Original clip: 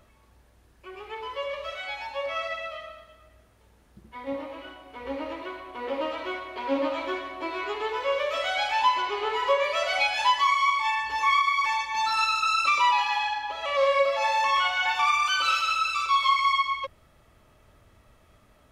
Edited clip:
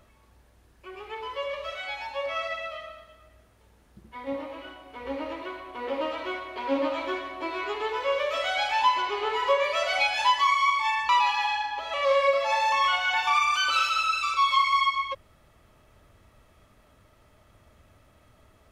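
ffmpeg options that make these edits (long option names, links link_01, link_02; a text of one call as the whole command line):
ffmpeg -i in.wav -filter_complex "[0:a]asplit=2[link_01][link_02];[link_01]atrim=end=11.092[link_03];[link_02]atrim=start=12.808[link_04];[link_03][link_04]acrossfade=duration=0.004:curve1=hsin:curve2=hsin" out.wav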